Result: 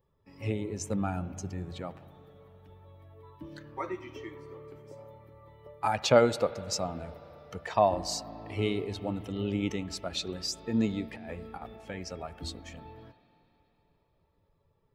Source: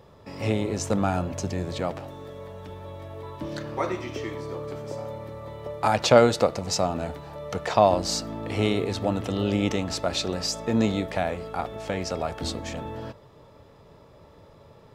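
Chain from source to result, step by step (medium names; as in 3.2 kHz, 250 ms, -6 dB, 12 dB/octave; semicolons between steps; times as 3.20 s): expander on every frequency bin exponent 1.5; 11.12–11.76 s: compressor with a negative ratio -37 dBFS, ratio -0.5; spring tank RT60 3.6 s, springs 35/58 ms, chirp 75 ms, DRR 15 dB; trim -3.5 dB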